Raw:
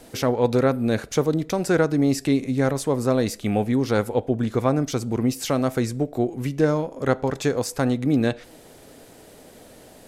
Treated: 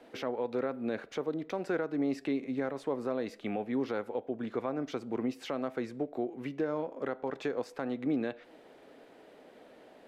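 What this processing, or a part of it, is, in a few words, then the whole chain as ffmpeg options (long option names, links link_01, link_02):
DJ mixer with the lows and highs turned down: -filter_complex "[0:a]acrossover=split=220 3500:gain=0.112 1 0.0891[link_01][link_02][link_03];[link_01][link_02][link_03]amix=inputs=3:normalize=0,alimiter=limit=-16.5dB:level=0:latency=1:release=239,volume=-6dB"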